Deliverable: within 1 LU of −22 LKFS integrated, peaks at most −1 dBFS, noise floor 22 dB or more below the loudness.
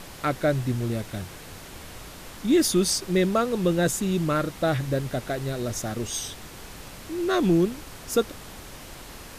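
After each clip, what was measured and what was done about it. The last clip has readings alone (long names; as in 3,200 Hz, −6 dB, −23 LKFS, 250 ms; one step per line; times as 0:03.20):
background noise floor −43 dBFS; target noise floor −48 dBFS; integrated loudness −25.5 LKFS; sample peak −11.0 dBFS; target loudness −22.0 LKFS
→ noise reduction from a noise print 6 dB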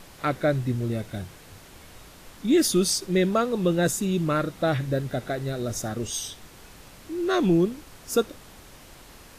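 background noise floor −49 dBFS; integrated loudness −25.5 LKFS; sample peak −11.0 dBFS; target loudness −22.0 LKFS
→ level +3.5 dB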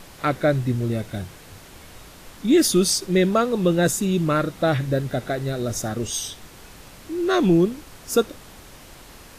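integrated loudness −22.0 LKFS; sample peak −7.5 dBFS; background noise floor −45 dBFS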